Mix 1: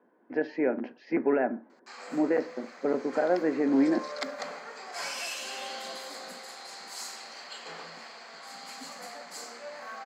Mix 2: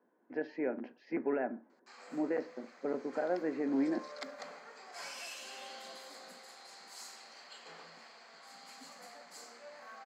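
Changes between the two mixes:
speech -8.0 dB; background -9.5 dB

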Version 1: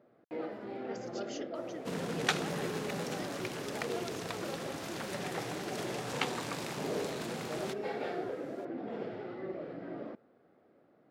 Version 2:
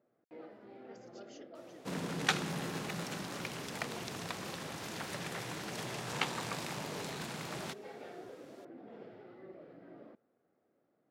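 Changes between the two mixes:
speech -11.5 dB; first sound -11.5 dB

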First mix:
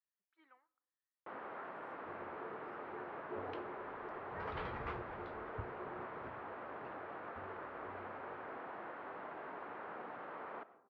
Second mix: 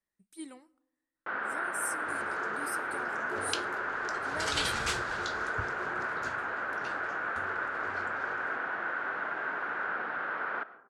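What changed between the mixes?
speech: remove high-pass 1.3 kHz 12 dB/octave; first sound: add resonant low-pass 1.5 kHz, resonance Q 6.7; master: remove four-pole ladder low-pass 1.8 kHz, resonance 25%

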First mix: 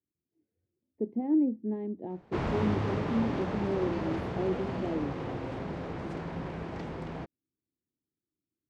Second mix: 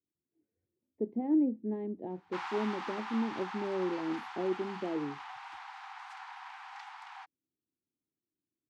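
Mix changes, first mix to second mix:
speech: add bass shelf 160 Hz -7.5 dB; background: add Chebyshev high-pass 760 Hz, order 8

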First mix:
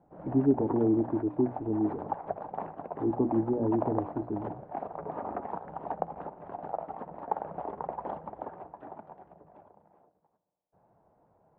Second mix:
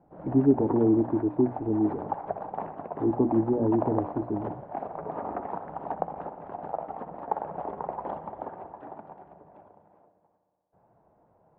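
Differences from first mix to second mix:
speech +3.5 dB; background: send +11.0 dB

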